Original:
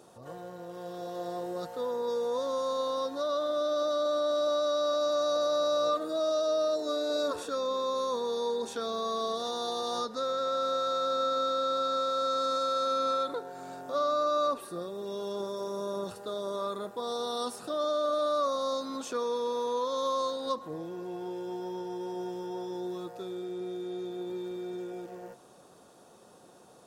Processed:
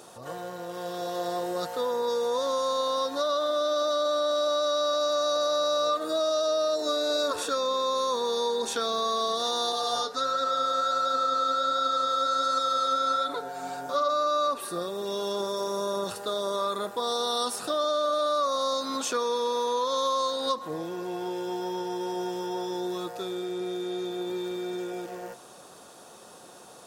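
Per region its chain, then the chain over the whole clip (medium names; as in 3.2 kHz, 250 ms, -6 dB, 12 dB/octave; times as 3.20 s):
9.72–14.10 s: comb 6.9 ms, depth 85% + flange 1.4 Hz, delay 3.7 ms, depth 7.7 ms, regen +54%
whole clip: tilt shelf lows -4.5 dB, about 720 Hz; compression 2.5:1, threshold -32 dBFS; trim +7 dB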